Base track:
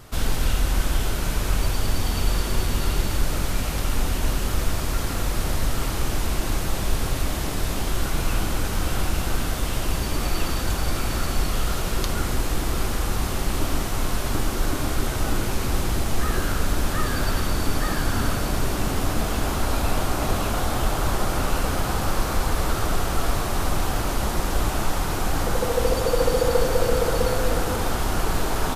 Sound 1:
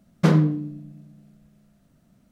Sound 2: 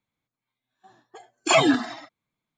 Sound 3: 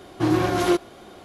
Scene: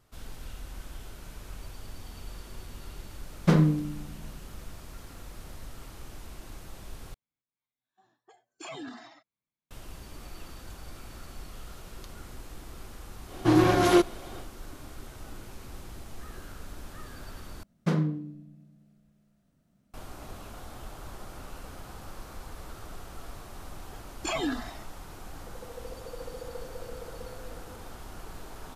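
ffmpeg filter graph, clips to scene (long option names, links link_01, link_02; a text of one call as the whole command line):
ffmpeg -i bed.wav -i cue0.wav -i cue1.wav -i cue2.wav -filter_complex "[1:a]asplit=2[link_01][link_02];[2:a]asplit=2[link_03][link_04];[0:a]volume=-20dB[link_05];[link_03]acompressor=threshold=-25dB:ratio=4:attack=0.14:release=24:knee=6:detection=rms[link_06];[link_04]alimiter=limit=-14dB:level=0:latency=1:release=92[link_07];[link_05]asplit=3[link_08][link_09][link_10];[link_08]atrim=end=7.144[link_11];[link_06]atrim=end=2.57,asetpts=PTS-STARTPTS,volume=-12.5dB[link_12];[link_09]atrim=start=9.706:end=17.634[link_13];[link_02]atrim=end=2.31,asetpts=PTS-STARTPTS,volume=-9dB[link_14];[link_10]atrim=start=19.936[link_15];[link_01]atrim=end=2.31,asetpts=PTS-STARTPTS,volume=-3.5dB,afade=type=in:duration=0.004:curve=hsin,afade=type=out:start_time=2.306:duration=0.004:curve=hsin,adelay=3240[link_16];[3:a]atrim=end=1.24,asetpts=PTS-STARTPTS,afade=type=in:duration=0.1,afade=type=out:start_time=1.14:duration=0.1,adelay=13250[link_17];[link_07]atrim=end=2.57,asetpts=PTS-STARTPTS,volume=-7.5dB,afade=type=in:duration=0.004:curve=hsin,afade=type=out:start_time=2.566:duration=0.004:curve=hsin,adelay=22780[link_18];[link_11][link_12]acrossfade=duration=0.004:curve1=hsin:curve2=hsin[link_19];[link_19][link_13]acrossfade=duration=0.004:curve1=hsin:curve2=hsin[link_20];[link_20][link_14]acrossfade=duration=0.004:curve1=hsin:curve2=hsin[link_21];[link_21][link_15]acrossfade=duration=0.004:curve1=hsin:curve2=hsin[link_22];[link_22][link_16][link_17][link_18]amix=inputs=4:normalize=0" out.wav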